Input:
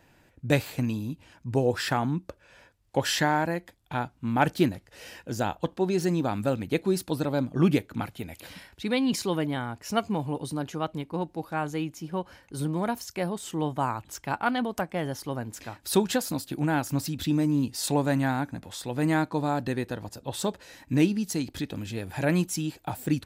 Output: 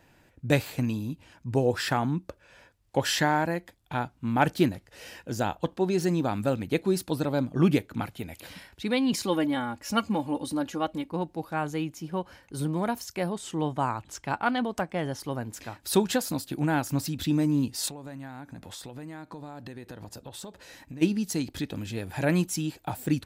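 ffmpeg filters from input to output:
ffmpeg -i in.wav -filter_complex "[0:a]asettb=1/sr,asplit=3[link_01][link_02][link_03];[link_01]atrim=end=9.234[link_04];[link_02]atrim=start=9.23:end=11.08,asetpts=PTS-STARTPTS,afade=type=in:duration=0.004:curve=qsin,afade=type=out:start_time=1.846:duration=0.004:curve=qsin,aecho=1:1:3.6:0.65,atrim=end_sample=81585[link_05];[link_03]atrim=start=11.076[link_06];[link_04][link_05]acrossfade=duration=0.004:curve1=hsin:curve2=qsin[link_07];[link_07][link_06]acrossfade=duration=0.004:curve1=qsin:curve2=hsin,asettb=1/sr,asplit=3[link_08][link_09][link_10];[link_08]atrim=end=13.324[link_11];[link_09]atrim=start=13.32:end=15.2,asetpts=PTS-STARTPTS,afade=type=in:duration=0.004:curve=qsin,afade=type=out:start_time=1.876:duration=0.004:curve=qsin,lowpass=9800[link_12];[link_10]atrim=start=15.196[link_13];[link_11][link_12]acrossfade=duration=0.004:curve1=hsin:curve2=qsin[link_14];[link_14][link_13]acrossfade=duration=0.004:curve1=qsin:curve2=hsin,asplit=3[link_15][link_16][link_17];[link_15]afade=type=out:start_time=17.88:duration=0.02[link_18];[link_16]acompressor=threshold=-37dB:ratio=12:attack=3.2:release=140:knee=1:detection=peak,afade=type=in:start_time=17.88:duration=0.02,afade=type=out:start_time=21.01:duration=0.02[link_19];[link_17]afade=type=in:start_time=21.01:duration=0.02[link_20];[link_18][link_19][link_20]amix=inputs=3:normalize=0" out.wav

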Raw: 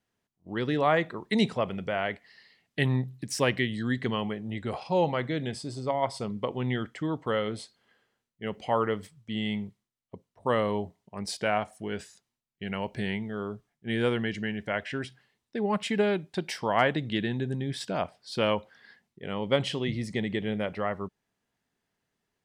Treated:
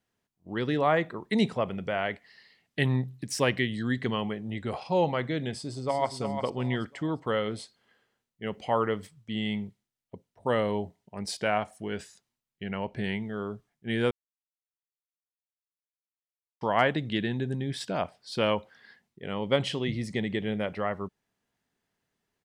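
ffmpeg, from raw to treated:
ffmpeg -i in.wav -filter_complex "[0:a]asettb=1/sr,asplit=3[link_01][link_02][link_03];[link_01]atrim=end=0.784[link_04];[link_02]atrim=start=0.78:end=1.85,asetpts=PTS-STARTPTS,afade=type=in:duration=0.004:curve=qsin,afade=type=out:start_time=1.066:duration=0.004:curve=qsin,equalizer=frequency=4600:width_type=o:width=2.3:gain=-3[link_05];[link_03]atrim=start=1.846[link_06];[link_04][link_05]acrossfade=duration=0.004:curve1=hsin:curve2=qsin[link_07];[link_07][link_06]acrossfade=duration=0.004:curve1=qsin:curve2=hsin,asplit=2[link_08][link_09];[link_09]afade=type=in:start_time=5.53:duration=0.01,afade=type=out:start_time=6.14:duration=0.01,aecho=0:1:350|700|1050|1400:0.421697|0.126509|0.0379527|0.0113858[link_10];[link_08][link_10]amix=inputs=2:normalize=0,asettb=1/sr,asplit=3[link_11][link_12][link_13];[link_11]atrim=end=9.614[link_14];[link_12]atrim=start=9.61:end=11.26,asetpts=PTS-STARTPTS,afade=type=in:duration=0.004:curve=qsin,afade=type=out:start_time=1.646:duration=0.004:curve=qsin,bandreject=frequency=1100:width=7.1[link_15];[link_13]atrim=start=11.256[link_16];[link_14][link_15]acrossfade=duration=0.004:curve1=hsin:curve2=qsin[link_17];[link_17][link_16]acrossfade=duration=0.004:curve1=qsin:curve2=hsin,asettb=1/sr,asplit=3[link_18][link_19][link_20];[link_18]atrim=end=12.634[link_21];[link_19]atrim=start=12.63:end=13.04,asetpts=PTS-STARTPTS,afade=type=in:duration=0.004:curve=qsin,afade=type=out:start_time=0.406:duration=0.004:curve=qsin,highshelf=frequency=4200:gain=-11.5[link_22];[link_20]atrim=start=13.036[link_23];[link_21][link_22]acrossfade=duration=0.004:curve1=hsin:curve2=qsin[link_24];[link_24][link_23]acrossfade=duration=0.004:curve1=qsin:curve2=hsin,asplit=3[link_25][link_26][link_27];[link_25]atrim=end=14.11,asetpts=PTS-STARTPTS,afade=type=out:start_time=14.106:duration=0.004:curve=hsin[link_28];[link_26]atrim=start=14.11:end=16.61,asetpts=PTS-STARTPTS,volume=0[link_29];[link_27]atrim=start=16.61,asetpts=PTS-STARTPTS,afade=type=in:duration=0.004:curve=hsin[link_30];[link_28][link_29][link_30]concat=n=3:v=0:a=1" out.wav

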